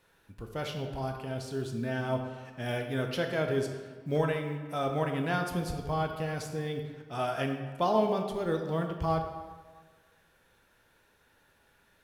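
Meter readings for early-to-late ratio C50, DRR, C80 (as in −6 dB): 6.0 dB, 3.5 dB, 7.5 dB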